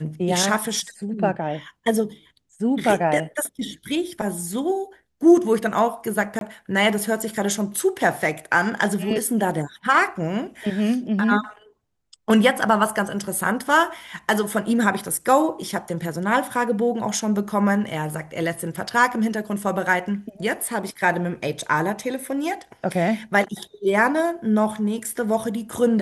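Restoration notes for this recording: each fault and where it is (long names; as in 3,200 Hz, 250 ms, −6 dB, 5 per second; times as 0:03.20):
0:06.39–0:06.41: drop-out 22 ms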